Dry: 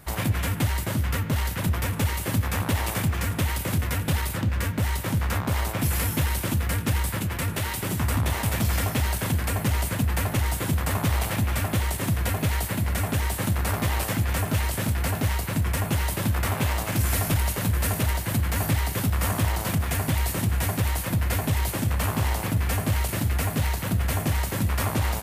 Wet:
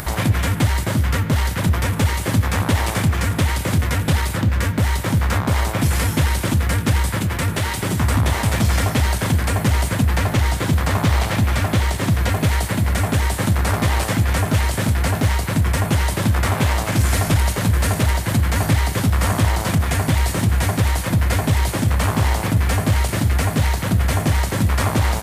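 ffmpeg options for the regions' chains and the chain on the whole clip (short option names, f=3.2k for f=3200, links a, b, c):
-filter_complex "[0:a]asettb=1/sr,asplit=3[a][b][c];[a]atrim=end=10.084[d];[b]atrim=start=10.08:end=12.32,asetpts=PTS-STARTPTS,afade=t=in:d=0.004:c=qsin,afade=t=out:st=2.236:d=0.004:c=qsin,acrossover=split=6500[e][f];[f]acompressor=threshold=-47dB:ratio=4:attack=1:release=60[g];[e][g]amix=inputs=2:normalize=0,highshelf=f=8.5k:g=8[h];[c]atrim=start=12.316[i];[d][h]acrossfade=d=0.004:c1=hsin:c2=qsin[j];[j][i]acrossfade=d=0.004:c1=qsin:c2=hsin,acrossover=split=9800[k][l];[l]acompressor=threshold=-48dB:ratio=4:attack=1:release=60[m];[k][m]amix=inputs=2:normalize=0,equalizer=f=2.7k:t=o:w=0.26:g=-3,acompressor=mode=upward:threshold=-28dB:ratio=2.5,volume=7dB"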